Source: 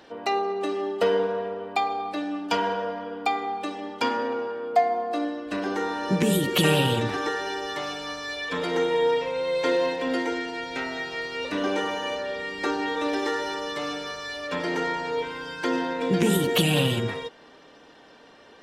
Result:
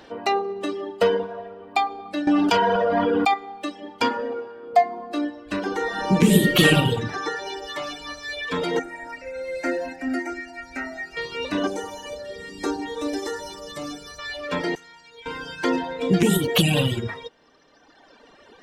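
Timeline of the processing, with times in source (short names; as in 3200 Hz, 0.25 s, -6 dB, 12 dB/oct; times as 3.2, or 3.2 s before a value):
2.27–3.34 fast leveller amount 100%
5.82–6.69 reverb throw, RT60 1.3 s, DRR -1 dB
8.79–11.17 fixed phaser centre 680 Hz, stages 8
11.67–14.19 EQ curve 250 Hz 0 dB, 2600 Hz -9 dB, 6000 Hz +2 dB, 8600 Hz +5 dB
14.75–15.26 passive tone stack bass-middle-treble 5-5-5
whole clip: reverb removal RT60 1.8 s; low shelf 110 Hz +7.5 dB; gain +3.5 dB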